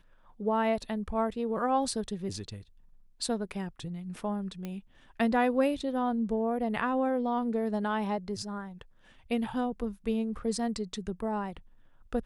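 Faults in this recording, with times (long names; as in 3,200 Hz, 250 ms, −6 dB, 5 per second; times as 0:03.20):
0:04.65: click −24 dBFS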